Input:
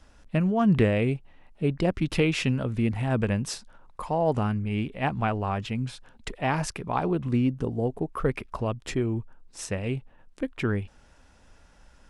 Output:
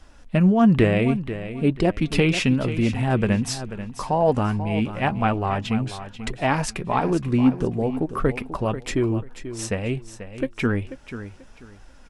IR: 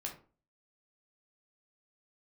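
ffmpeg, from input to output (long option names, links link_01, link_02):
-filter_complex "[0:a]flanger=delay=2.5:depth=3.1:regen=59:speed=1.1:shape=triangular,asplit=2[link_01][link_02];[link_02]aecho=0:1:488|976|1464:0.251|0.0603|0.0145[link_03];[link_01][link_03]amix=inputs=2:normalize=0,volume=9dB"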